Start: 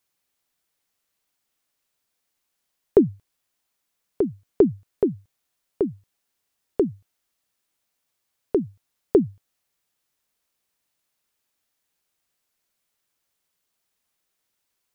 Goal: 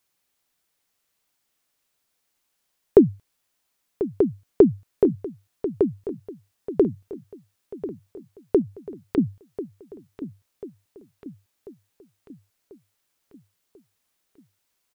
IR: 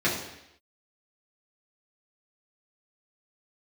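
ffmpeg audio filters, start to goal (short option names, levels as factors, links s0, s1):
-filter_complex "[0:a]asettb=1/sr,asplit=3[s0][s1][s2];[s0]atrim=end=8.614[s3];[s1]atrim=start=8.61:end=9.18,asetpts=PTS-STARTPTS,afade=t=in:d=0.004:c=qsin,afade=t=out:st=0.566:d=0.004:c=qsin,acompressor=threshold=0.0224:ratio=6[s4];[s2]atrim=start=9.176[s5];[s3][s4]acrossfade=d=0.004:c1=hsin:c2=qsin[s6];[s6][s5]acrossfade=d=0.004:c1=qsin:c2=hsin,aecho=1:1:1041|2082|3123|4164|5205:0.211|0.112|0.0594|0.0315|0.0167,volume=1.33"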